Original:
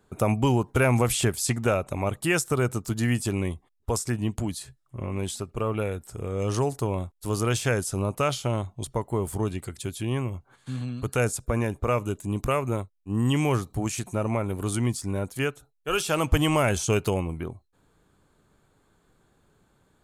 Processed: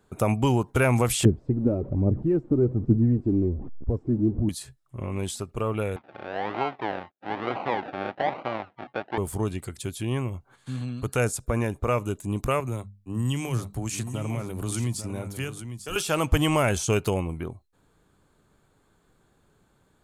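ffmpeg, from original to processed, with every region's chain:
-filter_complex "[0:a]asettb=1/sr,asplit=3[a][b][c];[a]atrim=end=1.254[d];[b]atrim=start=1.25:end=4.49,asetpts=PTS-STARTPTS,afade=t=in:d=0.004:c=qsin,afade=t=out:st=3.236:d=0.004:c=qsin,aeval=exprs='val(0)+0.5*0.0299*sgn(val(0))':c=same,lowpass=f=310:t=q:w=1.7,aphaser=in_gain=1:out_gain=1:delay=3.8:decay=0.44:speed=1.2:type=triangular[e];[c]atrim=start=4.486[f];[d][e]acrossfade=d=0.004:c1=hsin:c2=qsin[g];[g][f]acrossfade=d=0.004:c1=qsin:c2=hsin,asettb=1/sr,asplit=3[h][i][j];[h]atrim=end=5.964[k];[i]atrim=start=5.96:end=9.18,asetpts=PTS-STARTPTS,afade=t=in:d=0.004:c=qsin,afade=t=out:st=3.216:d=0.004:c=qsin,acrusher=samples=35:mix=1:aa=0.000001:lfo=1:lforange=21:lforate=1.1,highpass=310,equalizer=f=440:t=q:w=4:g=-6,equalizer=f=770:t=q:w=4:g=7,equalizer=f=2.7k:t=q:w=4:g=-3,lowpass=f=3k:w=0.5412,lowpass=f=3k:w=1.3066[l];[j]atrim=start=9.176[m];[k][l]acrossfade=d=0.004:c1=hsin:c2=qsin[n];[n][m]acrossfade=d=0.004:c1=qsin:c2=hsin,asettb=1/sr,asplit=3[o][p][q];[o]atrim=end=12.604[r];[p]atrim=start=12.6:end=15.96,asetpts=PTS-STARTPTS,afade=t=in:d=0.004:c=qsin,afade=t=out:st=3.356:d=0.004:c=qsin,bandreject=f=50:t=h:w=6,bandreject=f=100:t=h:w=6,bandreject=f=150:t=h:w=6,bandreject=f=200:t=h:w=6,acrossover=split=180|3000[s][t][u];[t]acompressor=threshold=-32dB:ratio=6:attack=3.2:release=140:knee=2.83:detection=peak[v];[s][v][u]amix=inputs=3:normalize=0,aecho=1:1:848:0.335,atrim=end_sample=148176[w];[q]atrim=start=15.956[x];[r][w]acrossfade=d=0.004:c1=hsin:c2=qsin[y];[y][x]acrossfade=d=0.004:c1=qsin:c2=hsin"

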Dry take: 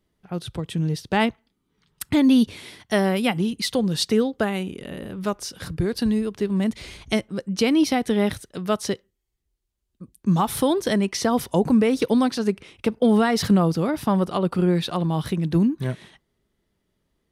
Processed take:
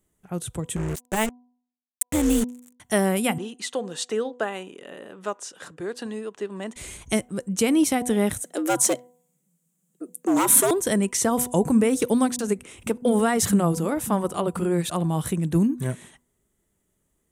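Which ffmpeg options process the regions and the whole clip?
-filter_complex "[0:a]asettb=1/sr,asplit=3[a][b][c];[a]atrim=end=0.764[d];[b]atrim=start=0.76:end=2.8,asetpts=PTS-STARTPTS,afade=t=in:d=0.004:c=qsin,afade=t=out:st=2.036:d=0.004:c=qsin,tremolo=f=220:d=0.788,acrusher=bits=4:mix=0:aa=0.5[e];[c]atrim=start=2.796[f];[d][e]acrossfade=d=0.004:c1=hsin:c2=qsin[g];[g][f]acrossfade=d=0.004:c1=qsin:c2=hsin,asettb=1/sr,asplit=3[h][i][j];[h]atrim=end=3.384[k];[i]atrim=start=3.38:end=6.76,asetpts=PTS-STARTPTS,afade=t=in:d=0.004:c=qsin,afade=t=out:st=3.376:d=0.004:c=qsin,highpass=430,lowpass=4.3k,bandreject=f=2.2k:w=10[l];[j]atrim=start=6.756[m];[k][l]acrossfade=d=0.004:c1=hsin:c2=qsin[n];[n][m]acrossfade=d=0.004:c1=qsin:c2=hsin,asettb=1/sr,asplit=3[o][p][q];[o]atrim=end=8.444[r];[p]atrim=start=8.44:end=10.71,asetpts=PTS-STARTPTS,afade=t=in:d=0.004:c=qsin,afade=t=out:st=2.266:d=0.004:c=qsin,asoftclip=type=hard:threshold=-22.5dB,acontrast=39,afreqshift=130[s];[q]atrim=start=10.706[t];[r][s]acrossfade=d=0.004:c1=hsin:c2=qsin[u];[u][t]acrossfade=d=0.004:c1=qsin:c2=hsin,asettb=1/sr,asplit=3[v][w][x];[v]atrim=end=12.364[y];[w]atrim=start=12.36:end=14.9,asetpts=PTS-STARTPTS,afade=t=in:d=0.004:c=qsin,afade=t=out:st=2.536:d=0.004:c=qsin,acompressor=mode=upward:threshold=-36dB:ratio=2.5:attack=3.2:release=140:knee=2.83:detection=peak,acrossover=split=180[z][aa];[aa]adelay=30[ab];[z][ab]amix=inputs=2:normalize=0,atrim=end_sample=112014[ac];[x]atrim=start=14.896[ad];[y][ac]acrossfade=d=0.004:c1=hsin:c2=qsin[ae];[ae][ad]acrossfade=d=0.004:c1=qsin:c2=hsin,highshelf=f=6k:t=q:w=3:g=8.5,bandreject=f=246.1:t=h:w=4,bandreject=f=492.2:t=h:w=4,bandreject=f=738.3:t=h:w=4,bandreject=f=984.4:t=h:w=4,volume=-1dB"

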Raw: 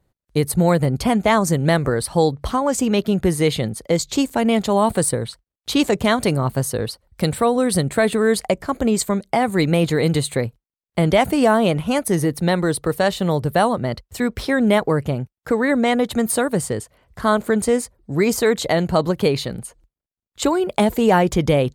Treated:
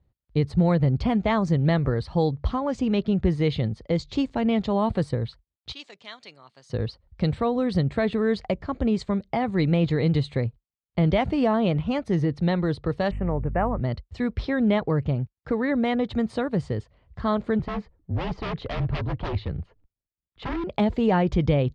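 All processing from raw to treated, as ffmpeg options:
-filter_complex "[0:a]asettb=1/sr,asplit=3[a][b][c];[a]atrim=end=5.724[d];[b]atrim=start=5.72:end=6.7,asetpts=PTS-STARTPTS,afade=t=in:d=0.004:c=qsin,afade=t=out:st=0.976:d=0.004:c=qsin,highpass=150,lowpass=7.8k,aderivative[e];[c]atrim=start=6.696[f];[d][e]acrossfade=d=0.004:c1=hsin:c2=qsin[g];[g][f]acrossfade=d=0.004:c1=qsin:c2=hsin,asettb=1/sr,asplit=3[h][i][j];[h]atrim=end=13.114[k];[i]atrim=start=13.11:end=13.81,asetpts=PTS-STARTPTS,afade=t=in:d=0.004:c=qsin,afade=t=out:st=0.696:d=0.004:c=qsin,lowshelf=f=120:g=-11.5,aeval=exprs='val(0)+0.0282*(sin(2*PI*50*n/s)+sin(2*PI*2*50*n/s)/2+sin(2*PI*3*50*n/s)/3+sin(2*PI*4*50*n/s)/4+sin(2*PI*5*50*n/s)/5)':c=same,asuperstop=centerf=4600:order=12:qfactor=0.85[l];[j]atrim=start=13.806[m];[k][l]acrossfade=d=0.004:c1=hsin:c2=qsin[n];[n][m]acrossfade=d=0.004:c1=qsin:c2=hsin,asettb=1/sr,asplit=3[o][p][q];[o]atrim=end=17.594[r];[p]atrim=start=17.59:end=20.64,asetpts=PTS-STARTPTS,afade=t=in:d=0.004:c=qsin,afade=t=out:st=3.046:d=0.004:c=qsin,lowpass=2.7k,afreqshift=-37,aeval=exprs='0.126*(abs(mod(val(0)/0.126+3,4)-2)-1)':c=same[s];[q]atrim=start=20.636[t];[r][s]acrossfade=d=0.004:c1=hsin:c2=qsin[u];[u][t]acrossfade=d=0.004:c1=qsin:c2=hsin,lowpass=f=4.6k:w=0.5412,lowpass=f=4.6k:w=1.3066,equalizer=f=64:t=o:w=2.9:g=12,bandreject=f=1.5k:w=20,volume=-8.5dB"

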